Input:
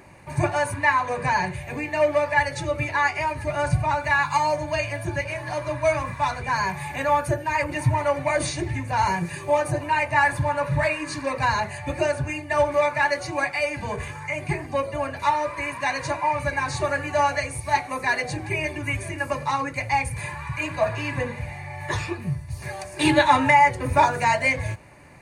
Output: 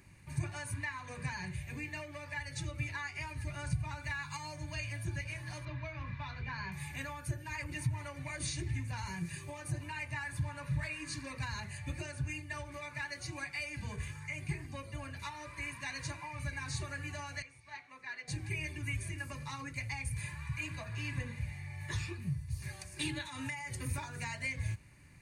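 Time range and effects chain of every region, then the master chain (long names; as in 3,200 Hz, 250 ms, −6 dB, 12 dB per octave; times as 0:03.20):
0:05.65–0:06.72: low-pass filter 4,100 Hz 24 dB per octave + double-tracking delay 22 ms −12 dB
0:17.42–0:18.28: high-pass filter 1,300 Hz 6 dB per octave + head-to-tape spacing loss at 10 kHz 27 dB
0:23.25–0:23.98: high-pass filter 75 Hz + high-shelf EQ 4,900 Hz +10 dB + downward compressor, threshold −22 dBFS
whole clip: downward compressor, threshold −22 dBFS; guitar amp tone stack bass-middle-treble 6-0-2; level +7.5 dB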